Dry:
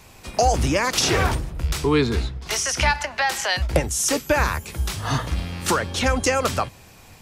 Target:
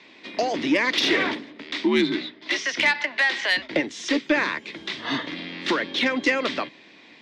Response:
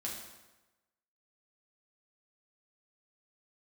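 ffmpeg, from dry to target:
-filter_complex "[0:a]asettb=1/sr,asplit=3[link_01][link_02][link_03];[link_01]atrim=end=1.344[link_04];[link_02]atrim=start=1.34:end=2.57,asetpts=PTS-STARTPTS,afade=type=in:duration=0.004:curve=qsin,afade=type=out:start_time=1.226:duration=0.004:curve=qsin,afreqshift=-77[link_05];[link_03]atrim=start=2.566[link_06];[link_04][link_05]acrossfade=duration=0.004:curve1=hsin:curve2=qsin[link_07];[link_07][link_06]acrossfade=duration=0.004:curve1=qsin:curve2=hsin,highpass=frequency=220:width=0.5412,highpass=frequency=220:width=1.3066,equalizer=frequency=300:width_type=q:width=4:gain=8,equalizer=frequency=490:width_type=q:width=4:gain=-3,equalizer=frequency=790:width_type=q:width=4:gain=-8,equalizer=frequency=1300:width_type=q:width=4:gain=-7,equalizer=frequency=2000:width_type=q:width=4:gain=9,equalizer=frequency=3600:width_type=q:width=4:gain=7,lowpass=frequency=4400:width=0.5412,lowpass=frequency=4400:width=1.3066,acontrast=90,volume=-8dB"

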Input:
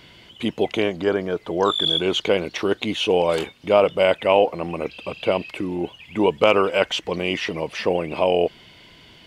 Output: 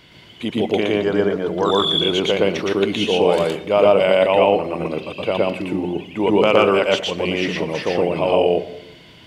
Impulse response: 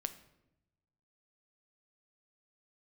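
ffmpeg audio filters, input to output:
-filter_complex "[0:a]asplit=2[link_01][link_02];[link_02]highpass=frequency=90:width=0.5412,highpass=frequency=90:width=1.3066[link_03];[1:a]atrim=start_sample=2205,lowshelf=frequency=450:gain=5,adelay=117[link_04];[link_03][link_04]afir=irnorm=-1:irlink=0,volume=1dB[link_05];[link_01][link_05]amix=inputs=2:normalize=0,volume=-1dB"

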